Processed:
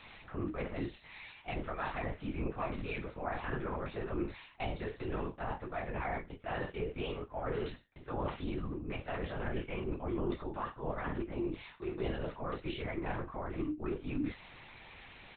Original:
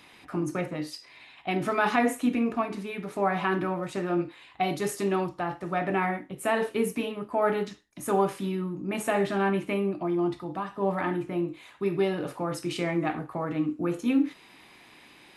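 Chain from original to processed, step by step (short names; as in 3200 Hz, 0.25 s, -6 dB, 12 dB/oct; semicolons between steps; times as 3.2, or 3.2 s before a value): low shelf 180 Hz -9 dB; reverse; compressor 6:1, threshold -36 dBFS, peak gain reduction 15.5 dB; reverse; doubler 26 ms -6.5 dB; LPC vocoder at 8 kHz whisper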